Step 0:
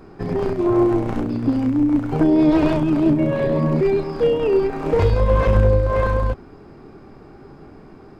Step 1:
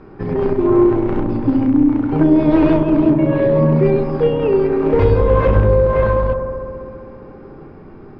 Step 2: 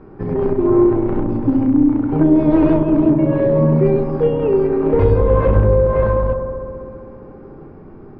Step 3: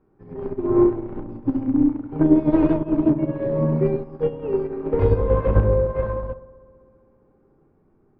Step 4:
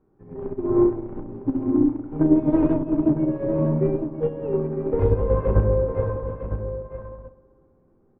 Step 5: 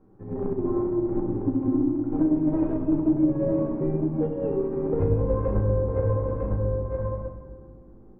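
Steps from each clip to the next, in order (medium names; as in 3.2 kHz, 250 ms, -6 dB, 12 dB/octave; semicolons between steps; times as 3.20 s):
low-pass 2.9 kHz 12 dB/octave; band-stop 700 Hz, Q 12; feedback echo behind a low-pass 65 ms, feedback 84%, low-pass 910 Hz, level -7 dB; trim +2.5 dB
treble shelf 2.1 kHz -12 dB
upward expansion 2.5:1, over -23 dBFS
low-pass 1.4 kHz 6 dB/octave; delay 955 ms -9.5 dB; trim -1.5 dB
treble shelf 2.1 kHz -9.5 dB; compression 3:1, threshold -32 dBFS, peak gain reduction 15 dB; on a send at -2.5 dB: reverberation RT60 1.3 s, pre-delay 4 ms; on the sum: trim +6 dB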